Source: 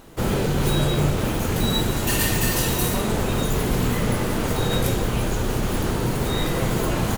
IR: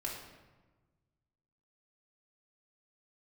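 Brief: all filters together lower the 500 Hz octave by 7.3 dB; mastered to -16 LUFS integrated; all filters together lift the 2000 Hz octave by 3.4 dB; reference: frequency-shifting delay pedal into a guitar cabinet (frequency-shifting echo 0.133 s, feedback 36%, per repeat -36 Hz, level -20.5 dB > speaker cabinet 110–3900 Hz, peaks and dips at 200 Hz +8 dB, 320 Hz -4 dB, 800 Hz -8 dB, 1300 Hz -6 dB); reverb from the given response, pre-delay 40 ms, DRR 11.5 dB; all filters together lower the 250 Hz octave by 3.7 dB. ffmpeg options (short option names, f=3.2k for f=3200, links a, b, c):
-filter_complex "[0:a]equalizer=f=250:t=o:g=-8.5,equalizer=f=500:t=o:g=-5,equalizer=f=2k:t=o:g=6,asplit=2[a][b];[1:a]atrim=start_sample=2205,adelay=40[c];[b][c]afir=irnorm=-1:irlink=0,volume=-13dB[d];[a][d]amix=inputs=2:normalize=0,asplit=4[e][f][g][h];[f]adelay=133,afreqshift=-36,volume=-20.5dB[i];[g]adelay=266,afreqshift=-72,volume=-29.4dB[j];[h]adelay=399,afreqshift=-108,volume=-38.2dB[k];[e][i][j][k]amix=inputs=4:normalize=0,highpass=110,equalizer=f=200:t=q:w=4:g=8,equalizer=f=320:t=q:w=4:g=-4,equalizer=f=800:t=q:w=4:g=-8,equalizer=f=1.3k:t=q:w=4:g=-6,lowpass=f=3.9k:w=0.5412,lowpass=f=3.9k:w=1.3066,volume=9.5dB"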